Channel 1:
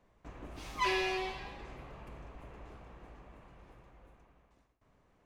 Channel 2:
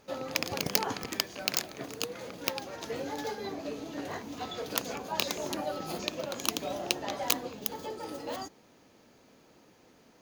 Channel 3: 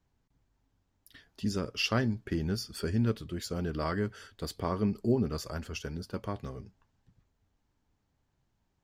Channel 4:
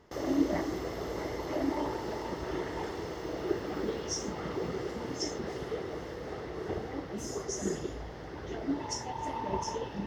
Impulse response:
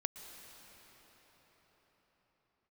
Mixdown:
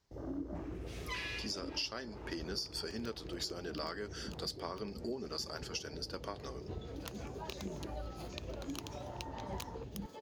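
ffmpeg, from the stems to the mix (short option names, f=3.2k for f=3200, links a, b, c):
-filter_complex "[0:a]highpass=f=1.3k:w=0.5412,highpass=f=1.3k:w=1.3066,adelay=300,volume=-2dB[a];[1:a]highshelf=f=11k:g=-9,alimiter=limit=-11dB:level=0:latency=1:release=455,adelay=2300,volume=-11dB,afade=t=in:st=6.55:d=0.74:silence=0.334965[b];[2:a]highpass=370,equalizer=f=5k:t=o:w=0.79:g=12,volume=-0.5dB,asplit=2[c][d];[3:a]lowshelf=f=330:g=10,afwtdn=0.02,equalizer=f=430:w=0.33:g=-7.5,volume=-7.5dB[e];[d]apad=whole_len=244873[f];[a][f]sidechaincompress=threshold=-45dB:ratio=8:attack=16:release=107[g];[g][b][c][e]amix=inputs=4:normalize=0,acompressor=threshold=-37dB:ratio=5"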